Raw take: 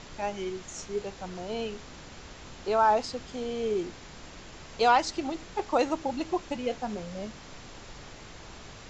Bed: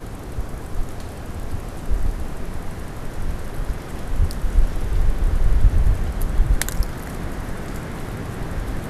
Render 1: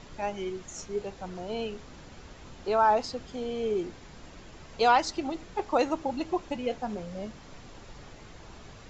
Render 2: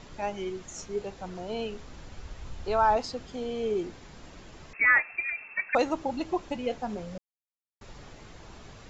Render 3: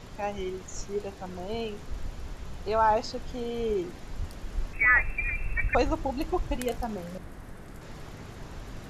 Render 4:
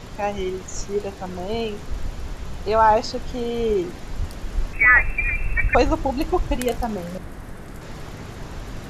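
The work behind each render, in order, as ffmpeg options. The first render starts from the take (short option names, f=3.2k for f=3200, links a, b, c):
-af "afftdn=nr=6:nf=-47"
-filter_complex "[0:a]asettb=1/sr,asplit=3[a][b][c];[a]atrim=end=1.634[d];[b]atrim=start=1.63:end=2.96,asetpts=PTS-STARTPTS,afade=t=in:d=0.004:c=qsin,afade=t=out:st=1.326:d=0.004:c=qsin,asubboost=boost=10.5:cutoff=110[e];[c]atrim=start=2.956[f];[d][e]acrossfade=d=0.004:c1=hsin:c2=qsin[g];[g][f]acrossfade=d=0.004:c1=qsin:c2=hsin,asettb=1/sr,asplit=3[h][i][j];[h]atrim=end=4.734[k];[i]atrim=start=4.73:end=5.75,asetpts=PTS-STARTPTS,afade=t=in:d=0.004:c=qsin,afade=t=out:st=1.016:d=0.004:c=qsin,lowpass=f=2.3k:t=q:w=0.5098,lowpass=f=2.3k:t=q:w=0.6013,lowpass=f=2.3k:t=q:w=0.9,lowpass=f=2.3k:t=q:w=2.563,afreqshift=-2700[l];[j]atrim=start=5.746[m];[k][l]acrossfade=d=0.004:c1=hsin:c2=qsin[n];[n][m]acrossfade=d=0.004:c1=qsin:c2=hsin,asplit=3[o][p][q];[o]atrim=end=7.18,asetpts=PTS-STARTPTS,afade=t=out:st=7.176:d=0.004:c=hsin[r];[p]atrim=start=7.18:end=7.81,asetpts=PTS-STARTPTS,volume=0[s];[q]atrim=start=7.81,asetpts=PTS-STARTPTS,afade=t=in:d=0.004:c=hsin[t];[r][s][t]concat=n=3:v=0:a=1"
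-filter_complex "[1:a]volume=-15.5dB[a];[0:a][a]amix=inputs=2:normalize=0"
-af "volume=7.5dB,alimiter=limit=-3dB:level=0:latency=1"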